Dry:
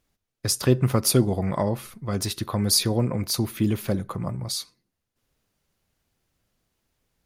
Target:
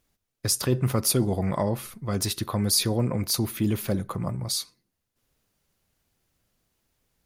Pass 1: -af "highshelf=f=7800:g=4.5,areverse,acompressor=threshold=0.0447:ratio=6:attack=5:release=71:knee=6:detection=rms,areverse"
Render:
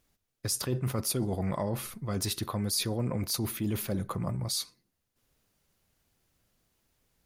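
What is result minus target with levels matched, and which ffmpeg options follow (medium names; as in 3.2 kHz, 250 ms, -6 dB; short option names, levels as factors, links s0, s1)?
compression: peak gain reduction +8.5 dB
-af "highshelf=f=7800:g=4.5,areverse,acompressor=threshold=0.141:ratio=6:attack=5:release=71:knee=6:detection=rms,areverse"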